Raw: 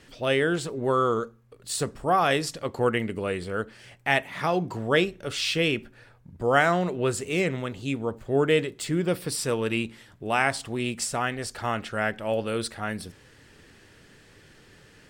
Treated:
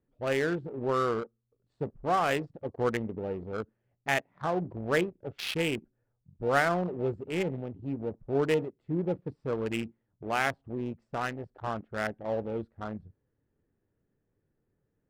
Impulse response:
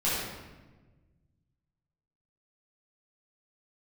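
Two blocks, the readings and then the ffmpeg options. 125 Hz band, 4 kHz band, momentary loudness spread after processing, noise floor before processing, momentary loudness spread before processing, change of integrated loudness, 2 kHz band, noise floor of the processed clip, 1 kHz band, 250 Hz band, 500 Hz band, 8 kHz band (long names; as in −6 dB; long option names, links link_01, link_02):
−5.0 dB, −9.5 dB, 11 LU, −55 dBFS, 10 LU, −5.5 dB, −6.0 dB, −79 dBFS, −5.0 dB, −4.5 dB, −4.5 dB, −14.0 dB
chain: -af "acrusher=bits=6:mode=log:mix=0:aa=0.000001,afwtdn=0.0398,adynamicsmooth=sensitivity=4:basefreq=780,volume=-4.5dB"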